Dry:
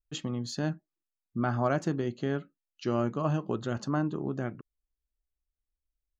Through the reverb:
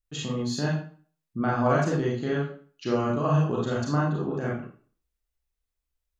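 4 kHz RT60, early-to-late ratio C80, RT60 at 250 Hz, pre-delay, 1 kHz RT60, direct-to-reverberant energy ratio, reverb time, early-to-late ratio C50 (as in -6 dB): 0.35 s, 8.5 dB, 0.45 s, 31 ms, 0.45 s, -5.0 dB, 0.45 s, 2.5 dB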